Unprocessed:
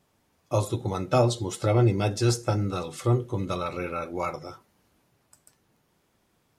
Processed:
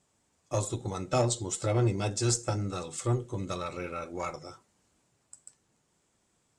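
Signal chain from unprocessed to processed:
harmonic generator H 6 −26 dB, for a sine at −9.5 dBFS
low-pass with resonance 7,800 Hz, resonance Q 4.9
level −5.5 dB

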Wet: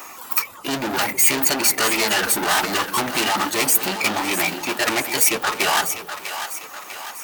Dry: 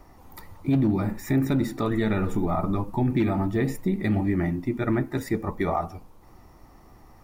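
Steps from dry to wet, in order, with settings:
reverb reduction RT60 0.95 s
mid-hump overdrive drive 28 dB, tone 6,300 Hz, clips at −14 dBFS
RIAA equalisation recording
in parallel at −4.5 dB: centre clipping without the shift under −24.5 dBFS
on the sum: formants moved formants +3 semitones
on a send: echo with a time of its own for lows and highs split 510 Hz, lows 199 ms, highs 648 ms, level −10 dB
on the sum: level −2.5 dB

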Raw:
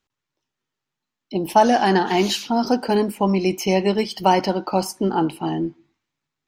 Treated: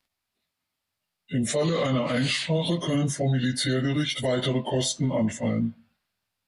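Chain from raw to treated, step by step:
phase-vocoder pitch shift without resampling −6.5 semitones
high-shelf EQ 2,900 Hz +11 dB
brickwall limiter −16.5 dBFS, peak gain reduction 12.5 dB

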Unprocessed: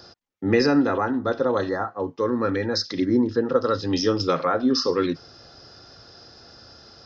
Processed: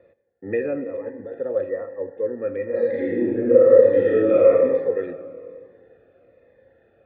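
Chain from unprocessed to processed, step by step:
0:00.84–0:01.34: compressor whose output falls as the input rises −29 dBFS, ratio −1
formant resonators in series e
0:02.68–0:04.48: thrown reverb, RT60 1.9 s, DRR −8.5 dB
convolution reverb RT60 2.3 s, pre-delay 8 ms, DRR 11.5 dB
phaser whose notches keep moving one way falling 1.1 Hz
level +7 dB

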